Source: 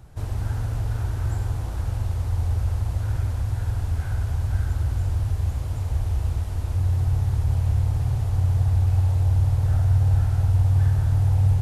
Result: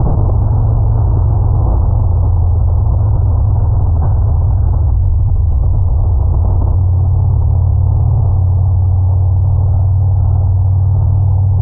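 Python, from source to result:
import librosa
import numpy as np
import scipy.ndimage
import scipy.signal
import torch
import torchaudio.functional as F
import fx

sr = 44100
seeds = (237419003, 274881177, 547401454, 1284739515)

y = scipy.signal.sosfilt(scipy.signal.butter(8, 1100.0, 'lowpass', fs=sr, output='sos'), x)
y = fx.low_shelf(y, sr, hz=66.0, db=12.0, at=(4.91, 5.92))
y = fx.env_flatten(y, sr, amount_pct=100)
y = y * 10.0 ** (3.5 / 20.0)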